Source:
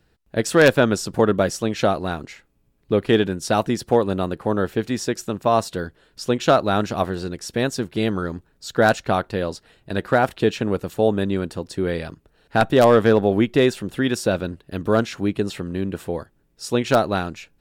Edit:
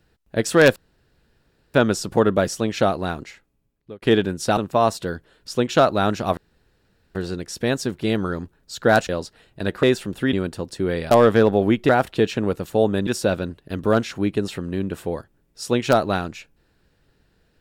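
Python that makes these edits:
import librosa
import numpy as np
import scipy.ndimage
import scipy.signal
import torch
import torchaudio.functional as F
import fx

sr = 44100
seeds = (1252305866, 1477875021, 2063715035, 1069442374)

y = fx.edit(x, sr, fx.insert_room_tone(at_s=0.76, length_s=0.98),
    fx.fade_out_span(start_s=2.24, length_s=0.8),
    fx.cut(start_s=3.59, length_s=1.69),
    fx.insert_room_tone(at_s=7.08, length_s=0.78),
    fx.cut(start_s=9.02, length_s=0.37),
    fx.swap(start_s=10.13, length_s=1.18, other_s=13.59, other_length_s=0.5),
    fx.cut(start_s=12.09, length_s=0.72), tone=tone)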